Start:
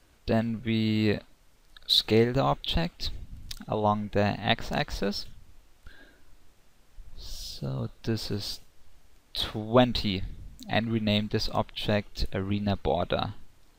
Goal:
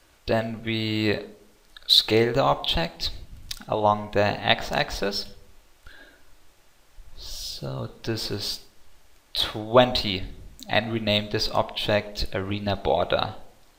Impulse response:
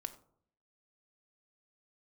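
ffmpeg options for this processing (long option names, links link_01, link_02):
-filter_complex "[0:a]asplit=2[link_01][link_02];[link_02]highpass=330[link_03];[1:a]atrim=start_sample=2205,asetrate=33516,aresample=44100[link_04];[link_03][link_04]afir=irnorm=-1:irlink=0,volume=1.5dB[link_05];[link_01][link_05]amix=inputs=2:normalize=0"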